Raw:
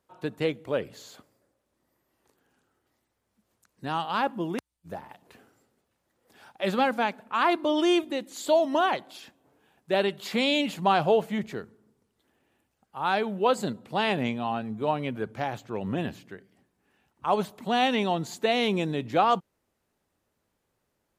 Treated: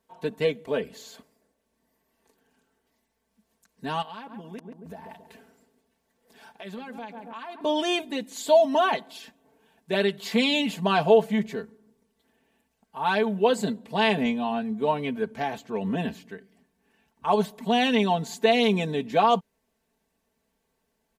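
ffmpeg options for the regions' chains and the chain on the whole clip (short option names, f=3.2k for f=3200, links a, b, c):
-filter_complex "[0:a]asettb=1/sr,asplit=3[a][b][c];[a]atrim=end=4.024[d];[b]atrim=start=4.02:end=7.61,asetpts=PTS-STARTPTS,afade=t=in:d=0.004:c=qsin,afade=t=out:st=3.586:d=0.004:c=qsin,asplit=2[e][f];[f]adelay=137,lowpass=f=890:p=1,volume=-11dB,asplit=2[g][h];[h]adelay=137,lowpass=f=890:p=1,volume=0.49,asplit=2[i][j];[j]adelay=137,lowpass=f=890:p=1,volume=0.49,asplit=2[k][l];[l]adelay=137,lowpass=f=890:p=1,volume=0.49,asplit=2[m][n];[n]adelay=137,lowpass=f=890:p=1,volume=0.49[o];[e][g][i][k][m][o]amix=inputs=6:normalize=0,atrim=end_sample=158319,acompressor=threshold=-40dB:ratio=4:attack=3.2:release=140:knee=1:detection=peak[p];[c]atrim=start=7.606[q];[d][p]acrossfade=d=0.004:c1=hsin:c2=qsin[r];[r][q]acrossfade=d=0.004:c1=qsin:c2=hsin,bandreject=f=1.3k:w=7.6,aecho=1:1:4.5:0.81"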